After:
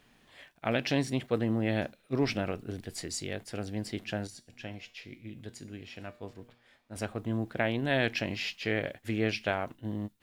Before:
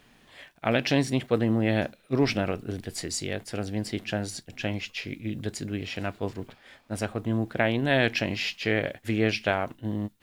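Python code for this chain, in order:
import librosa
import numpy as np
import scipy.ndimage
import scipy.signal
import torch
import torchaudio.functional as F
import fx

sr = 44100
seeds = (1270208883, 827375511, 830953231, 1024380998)

y = fx.comb_fb(x, sr, f0_hz=120.0, decay_s=0.52, harmonics='all', damping=0.0, mix_pct=60, at=(4.27, 6.96))
y = y * librosa.db_to_amplitude(-5.0)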